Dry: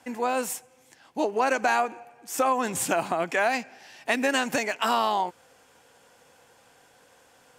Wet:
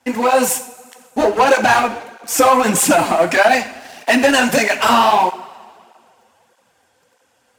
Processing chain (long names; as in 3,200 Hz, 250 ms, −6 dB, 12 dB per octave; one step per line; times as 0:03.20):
leveller curve on the samples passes 3
coupled-rooms reverb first 0.45 s, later 2.3 s, from −18 dB, DRR 6.5 dB
through-zero flanger with one copy inverted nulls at 1.6 Hz, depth 7.3 ms
level +5.5 dB